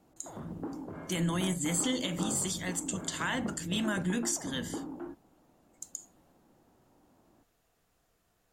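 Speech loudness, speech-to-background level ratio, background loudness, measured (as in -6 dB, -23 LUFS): -32.5 LUFS, 9.0 dB, -41.5 LUFS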